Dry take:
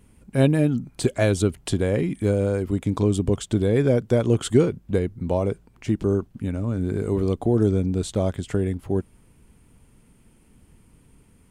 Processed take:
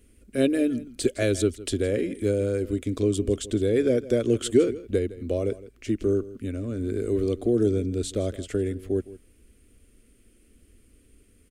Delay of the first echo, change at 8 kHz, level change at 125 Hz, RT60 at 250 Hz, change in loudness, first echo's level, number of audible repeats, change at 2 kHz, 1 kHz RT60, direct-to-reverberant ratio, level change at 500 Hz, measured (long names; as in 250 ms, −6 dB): 161 ms, 0.0 dB, −8.0 dB, no reverb audible, −2.5 dB, −17.5 dB, 1, −3.0 dB, no reverb audible, no reverb audible, −1.0 dB